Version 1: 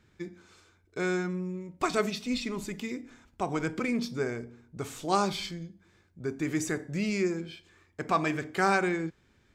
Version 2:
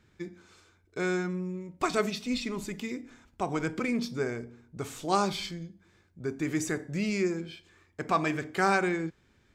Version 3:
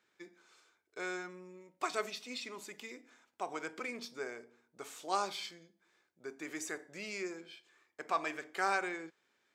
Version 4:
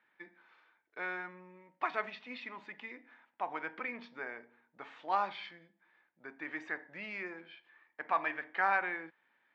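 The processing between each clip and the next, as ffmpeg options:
-af anull
-af "highpass=490,volume=0.501"
-af "highpass=130,equalizer=f=400:t=q:w=4:g=-9,equalizer=f=900:t=q:w=4:g=7,equalizer=f=1800:t=q:w=4:g=8,lowpass=f=3100:w=0.5412,lowpass=f=3100:w=1.3066"

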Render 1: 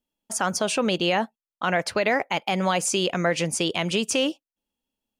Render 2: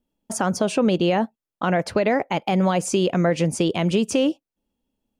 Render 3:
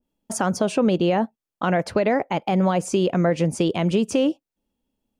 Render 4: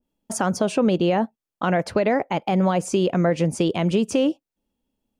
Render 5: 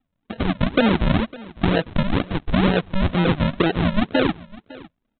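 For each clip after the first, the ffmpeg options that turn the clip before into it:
-filter_complex "[0:a]tiltshelf=f=800:g=6.5,asplit=2[s0][s1];[s1]acompressor=threshold=0.0398:ratio=6,volume=1.33[s2];[s0][s2]amix=inputs=2:normalize=0,volume=0.794"
-af "adynamicequalizer=threshold=0.0158:dfrequency=1800:dqfactor=0.7:tfrequency=1800:tqfactor=0.7:attack=5:release=100:ratio=0.375:range=2.5:mode=cutabove:tftype=highshelf"
-af anull
-af "aresample=8000,acrusher=samples=14:mix=1:aa=0.000001:lfo=1:lforange=14:lforate=2.1,aresample=44100,aecho=1:1:555:0.0944,volume=1.19"

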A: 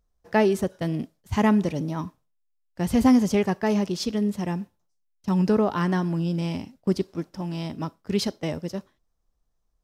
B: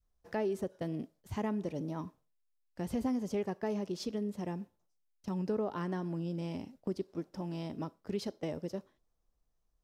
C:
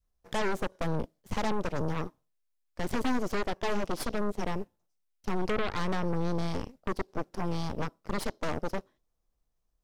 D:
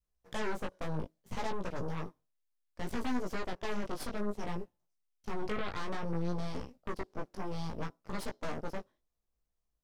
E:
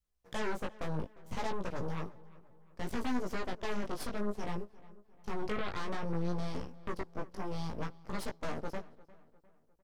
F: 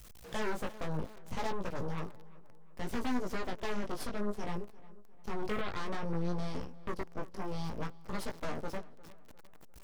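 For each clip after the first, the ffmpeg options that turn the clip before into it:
-af "acompressor=threshold=0.0141:ratio=2.5,adynamicequalizer=threshold=0.00447:dfrequency=450:dqfactor=0.72:tfrequency=450:tqfactor=0.72:attack=5:release=100:ratio=0.375:range=3.5:mode=boostabove:tftype=bell,volume=0.562"
-af "aeval=exprs='0.0668*(cos(1*acos(clip(val(0)/0.0668,-1,1)))-cos(1*PI/2))+0.0299*(cos(8*acos(clip(val(0)/0.0668,-1,1)))-cos(8*PI/2))':c=same"
-af "flanger=delay=16:depth=4.1:speed=0.61,volume=0.708"
-filter_complex "[0:a]asplit=2[s0][s1];[s1]adelay=352,lowpass=f=2900:p=1,volume=0.1,asplit=2[s2][s3];[s3]adelay=352,lowpass=f=2900:p=1,volume=0.47,asplit=2[s4][s5];[s5]adelay=352,lowpass=f=2900:p=1,volume=0.47,asplit=2[s6][s7];[s7]adelay=352,lowpass=f=2900:p=1,volume=0.47[s8];[s0][s2][s4][s6][s8]amix=inputs=5:normalize=0"
-af "aeval=exprs='val(0)+0.5*0.00531*sgn(val(0))':c=same"

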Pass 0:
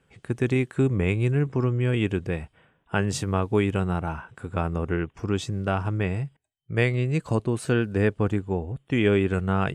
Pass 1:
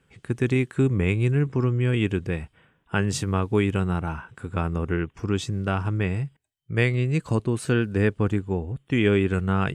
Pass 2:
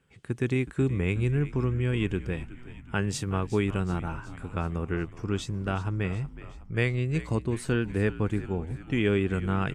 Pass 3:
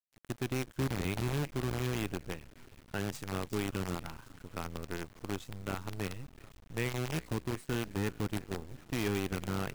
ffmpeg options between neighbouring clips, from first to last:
-af "equalizer=f=660:w=1.5:g=-5,volume=1.19"
-filter_complex "[0:a]asplit=7[s0][s1][s2][s3][s4][s5][s6];[s1]adelay=370,afreqshift=-65,volume=0.178[s7];[s2]adelay=740,afreqshift=-130,volume=0.107[s8];[s3]adelay=1110,afreqshift=-195,volume=0.0638[s9];[s4]adelay=1480,afreqshift=-260,volume=0.0385[s10];[s5]adelay=1850,afreqshift=-325,volume=0.0232[s11];[s6]adelay=2220,afreqshift=-390,volume=0.0138[s12];[s0][s7][s8][s9][s10][s11][s12]amix=inputs=7:normalize=0,volume=0.596"
-af "acrusher=bits=5:dc=4:mix=0:aa=0.000001,volume=0.376"

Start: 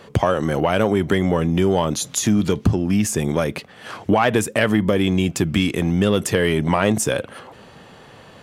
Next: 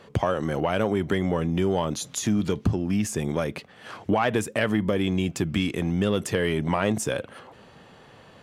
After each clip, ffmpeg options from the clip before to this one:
-af "highshelf=f=8300:g=-5,volume=0.501"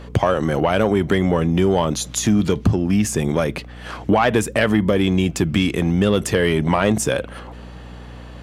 -af "acontrast=87,aeval=exprs='val(0)+0.0158*(sin(2*PI*60*n/s)+sin(2*PI*2*60*n/s)/2+sin(2*PI*3*60*n/s)/3+sin(2*PI*4*60*n/s)/4+sin(2*PI*5*60*n/s)/5)':c=same"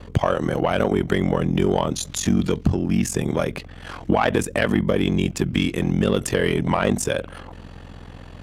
-af "aeval=exprs='val(0)*sin(2*PI*22*n/s)':c=same"

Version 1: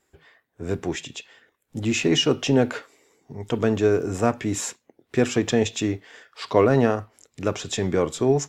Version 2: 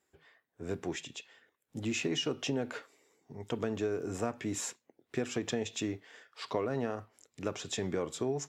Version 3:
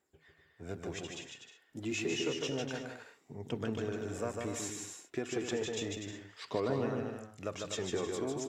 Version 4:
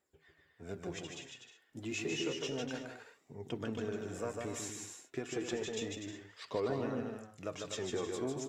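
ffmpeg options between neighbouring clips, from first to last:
-af "highpass=f=110:p=1,acompressor=threshold=0.0891:ratio=6,volume=0.398"
-filter_complex "[0:a]aphaser=in_gain=1:out_gain=1:delay=3.3:decay=0.4:speed=0.3:type=triangular,asplit=2[s0][s1];[s1]aecho=0:1:150|247.5|310.9|352.1|378.8:0.631|0.398|0.251|0.158|0.1[s2];[s0][s2]amix=inputs=2:normalize=0,volume=0.631"
-af "flanger=delay=1.5:depth=7.4:regen=63:speed=0.31:shape=triangular,volume=1.26"

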